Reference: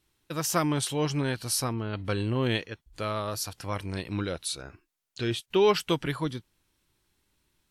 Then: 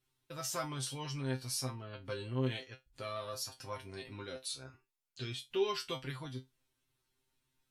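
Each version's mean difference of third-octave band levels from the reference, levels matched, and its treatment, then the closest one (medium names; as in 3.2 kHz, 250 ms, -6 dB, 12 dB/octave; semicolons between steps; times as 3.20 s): 3.5 dB: dynamic bell 5.1 kHz, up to +5 dB, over -45 dBFS, Q 0.75; in parallel at -0.5 dB: compression, threshold -34 dBFS, peak gain reduction 16 dB; on the sum: feedback comb 130 Hz, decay 0.18 s, harmonics all, mix 100%; trim -6 dB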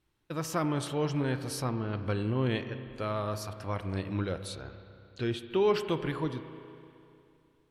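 5.0 dB: treble shelf 3.3 kHz -11.5 dB; in parallel at +0.5 dB: peak limiter -21.5 dBFS, peak gain reduction 9.5 dB; on the sum: spring tank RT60 2.7 s, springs 31/38 ms, chirp 40 ms, DRR 9.5 dB; trim -7.5 dB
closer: first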